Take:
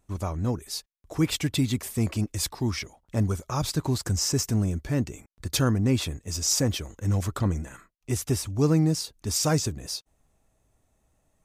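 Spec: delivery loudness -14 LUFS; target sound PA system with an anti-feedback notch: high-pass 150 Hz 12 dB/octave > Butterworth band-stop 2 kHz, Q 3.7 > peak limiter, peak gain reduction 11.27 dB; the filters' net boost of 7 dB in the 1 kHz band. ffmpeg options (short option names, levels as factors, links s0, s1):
-af "highpass=150,asuperstop=centerf=2000:order=8:qfactor=3.7,equalizer=f=1000:t=o:g=9,volume=7.08,alimiter=limit=0.75:level=0:latency=1"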